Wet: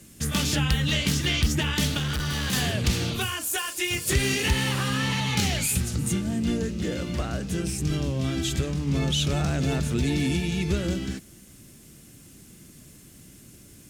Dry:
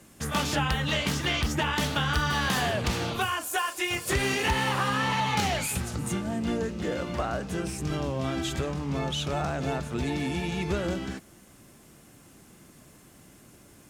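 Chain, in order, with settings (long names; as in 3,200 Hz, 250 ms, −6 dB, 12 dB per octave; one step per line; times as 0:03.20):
parametric band 890 Hz −14 dB 2.1 octaves
0:01.97–0:02.53: hard clipping −31.5 dBFS, distortion −17 dB
0:08.87–0:10.37: envelope flattener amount 50%
level +6.5 dB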